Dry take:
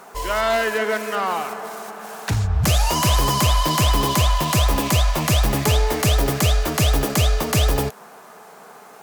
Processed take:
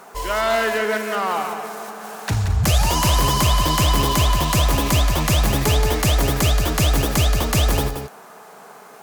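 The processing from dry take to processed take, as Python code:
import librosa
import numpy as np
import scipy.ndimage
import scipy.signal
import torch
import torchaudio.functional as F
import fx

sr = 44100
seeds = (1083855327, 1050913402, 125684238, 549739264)

y = x + 10.0 ** (-7.5 / 20.0) * np.pad(x, (int(177 * sr / 1000.0), 0))[:len(x)]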